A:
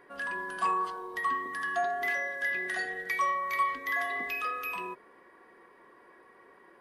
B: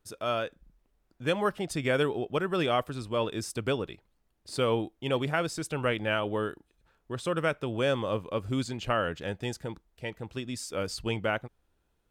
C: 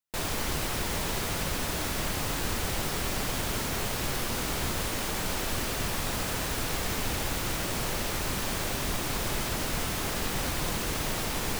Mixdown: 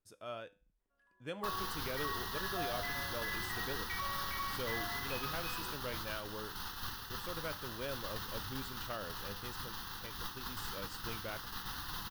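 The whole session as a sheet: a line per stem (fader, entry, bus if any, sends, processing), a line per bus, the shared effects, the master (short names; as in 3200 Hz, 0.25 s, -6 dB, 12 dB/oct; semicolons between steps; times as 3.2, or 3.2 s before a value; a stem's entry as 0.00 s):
-4.0 dB, 0.80 s, bus A, no send, dry
-10.5 dB, 0.00 s, no bus, no send, dry
+1.5 dB, 1.30 s, bus A, no send, resonant low shelf 540 Hz -7 dB, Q 1.5; fixed phaser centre 2300 Hz, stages 6
bus A: 0.0 dB, gate -32 dBFS, range -30 dB; limiter -25 dBFS, peak gain reduction 6.5 dB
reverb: off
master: resonator 100 Hz, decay 0.36 s, harmonics all, mix 50%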